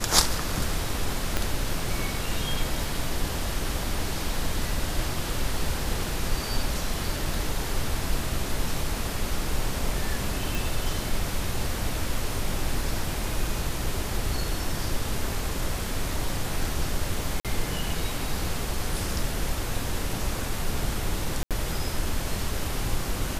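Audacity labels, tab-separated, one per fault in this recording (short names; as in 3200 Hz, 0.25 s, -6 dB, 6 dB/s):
1.370000	1.370000	pop -9 dBFS
2.840000	2.840000	gap 2 ms
10.550000	10.550000	pop
17.400000	17.450000	gap 47 ms
21.430000	21.510000	gap 77 ms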